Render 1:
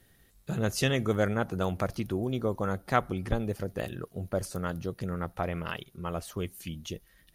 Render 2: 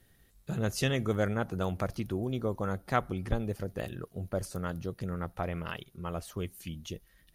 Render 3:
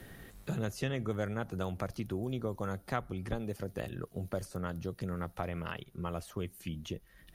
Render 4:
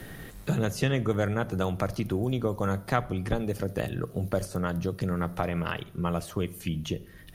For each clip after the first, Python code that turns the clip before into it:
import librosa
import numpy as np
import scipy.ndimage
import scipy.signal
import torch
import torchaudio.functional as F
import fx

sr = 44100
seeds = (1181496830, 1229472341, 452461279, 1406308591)

y1 = fx.low_shelf(x, sr, hz=120.0, db=3.5)
y1 = y1 * 10.0 ** (-3.0 / 20.0)
y2 = fx.band_squash(y1, sr, depth_pct=70)
y2 = y2 * 10.0 ** (-4.0 / 20.0)
y3 = fx.room_shoebox(y2, sr, seeds[0], volume_m3=2000.0, walls='furnished', distance_m=0.48)
y3 = y3 * 10.0 ** (8.0 / 20.0)